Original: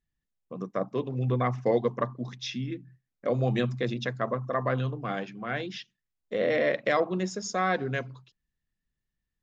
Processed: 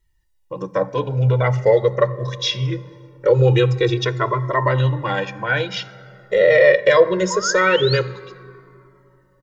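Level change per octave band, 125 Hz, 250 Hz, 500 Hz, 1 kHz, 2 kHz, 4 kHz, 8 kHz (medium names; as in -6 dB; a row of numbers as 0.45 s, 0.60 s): +12.5 dB, +5.5 dB, +13.0 dB, +8.5 dB, +12.5 dB, +14.5 dB, no reading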